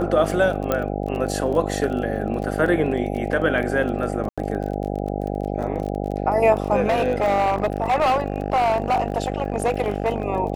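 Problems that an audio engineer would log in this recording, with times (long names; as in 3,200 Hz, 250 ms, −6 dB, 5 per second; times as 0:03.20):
mains buzz 50 Hz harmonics 16 −26 dBFS
surface crackle 24 per second −29 dBFS
0:00.72: click −8 dBFS
0:04.29–0:04.38: drop-out 86 ms
0:06.88–0:10.26: clipping −15.5 dBFS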